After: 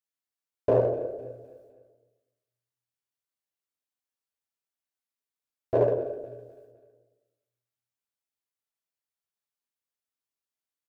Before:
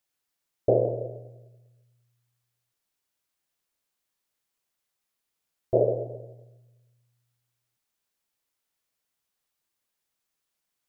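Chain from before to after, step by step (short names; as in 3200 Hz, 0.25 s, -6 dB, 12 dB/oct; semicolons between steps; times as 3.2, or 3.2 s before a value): gate -59 dBFS, range -13 dB; low shelf 140 Hz -6.5 dB; in parallel at -9 dB: hard clip -22.5 dBFS, distortion -7 dB; on the sum: feedback echo 0.254 s, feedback 43%, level -16 dB; on a send at -3 dB: reverb RT60 0.80 s, pre-delay 6 ms; on the sum: Doppler distortion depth 0.19 ms; gain -3 dB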